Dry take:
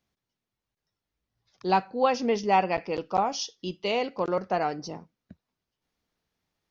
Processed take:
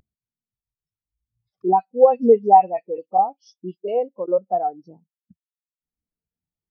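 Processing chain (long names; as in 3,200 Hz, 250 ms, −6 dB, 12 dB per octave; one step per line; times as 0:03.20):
high-shelf EQ 5,100 Hz −4.5 dB
upward compression, threshold −26 dBFS
0:01.68–0:03.88: all-pass dispersion highs, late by 91 ms, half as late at 2,800 Hz
boost into a limiter +14 dB
every bin expanded away from the loudest bin 2.5 to 1
level −1 dB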